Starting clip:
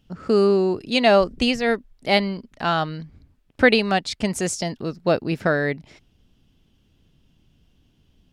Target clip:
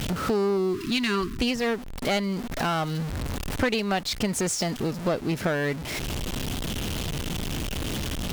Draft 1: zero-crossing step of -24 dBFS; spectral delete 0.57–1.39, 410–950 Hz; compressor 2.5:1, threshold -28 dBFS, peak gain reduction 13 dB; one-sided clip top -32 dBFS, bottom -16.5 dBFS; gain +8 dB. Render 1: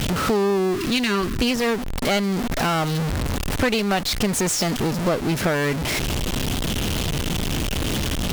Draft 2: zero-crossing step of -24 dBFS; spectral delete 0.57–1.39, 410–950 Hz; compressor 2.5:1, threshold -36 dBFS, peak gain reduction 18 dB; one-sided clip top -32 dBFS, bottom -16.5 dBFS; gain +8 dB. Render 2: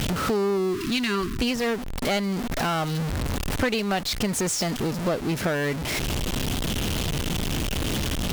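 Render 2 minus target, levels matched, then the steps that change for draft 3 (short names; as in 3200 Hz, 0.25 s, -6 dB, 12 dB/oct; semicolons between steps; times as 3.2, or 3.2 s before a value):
zero-crossing step: distortion +6 dB
change: zero-crossing step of -31 dBFS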